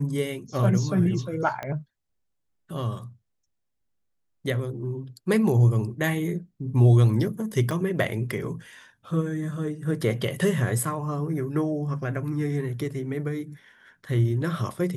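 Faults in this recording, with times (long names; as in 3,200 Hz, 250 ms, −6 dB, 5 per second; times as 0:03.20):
0:01.63: click −18 dBFS
0:07.71: drop-out 3 ms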